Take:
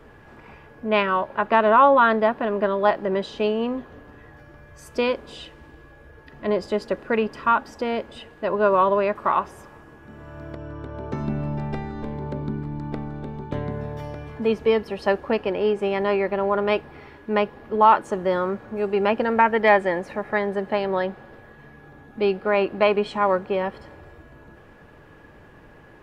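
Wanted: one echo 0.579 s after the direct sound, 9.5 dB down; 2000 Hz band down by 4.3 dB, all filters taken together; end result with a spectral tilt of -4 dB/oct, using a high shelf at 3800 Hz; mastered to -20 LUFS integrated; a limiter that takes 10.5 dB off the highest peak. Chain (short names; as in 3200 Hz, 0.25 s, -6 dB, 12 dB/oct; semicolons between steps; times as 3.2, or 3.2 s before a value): bell 2000 Hz -3.5 dB; high shelf 3800 Hz -9 dB; limiter -17 dBFS; echo 0.579 s -9.5 dB; gain +8 dB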